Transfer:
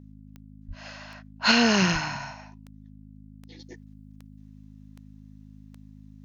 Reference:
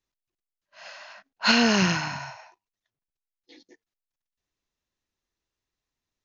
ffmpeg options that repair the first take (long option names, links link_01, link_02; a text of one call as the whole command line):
ffmpeg -i in.wav -filter_complex "[0:a]adeclick=threshold=4,bandreject=frequency=52.1:width_type=h:width=4,bandreject=frequency=104.2:width_type=h:width=4,bandreject=frequency=156.3:width_type=h:width=4,bandreject=frequency=208.4:width_type=h:width=4,bandreject=frequency=260.5:width_type=h:width=4,asplit=3[link_01][link_02][link_03];[link_01]afade=type=out:start_time=0.67:duration=0.02[link_04];[link_02]highpass=frequency=140:width=0.5412,highpass=frequency=140:width=1.3066,afade=type=in:start_time=0.67:duration=0.02,afade=type=out:start_time=0.79:duration=0.02[link_05];[link_03]afade=type=in:start_time=0.79:duration=0.02[link_06];[link_04][link_05][link_06]amix=inputs=3:normalize=0,asplit=3[link_07][link_08][link_09];[link_07]afade=type=out:start_time=1.92:duration=0.02[link_10];[link_08]highpass=frequency=140:width=0.5412,highpass=frequency=140:width=1.3066,afade=type=in:start_time=1.92:duration=0.02,afade=type=out:start_time=2.04:duration=0.02[link_11];[link_09]afade=type=in:start_time=2.04:duration=0.02[link_12];[link_10][link_11][link_12]amix=inputs=3:normalize=0,asetnsamples=nb_out_samples=441:pad=0,asendcmd='3.59 volume volume -8.5dB',volume=0dB" out.wav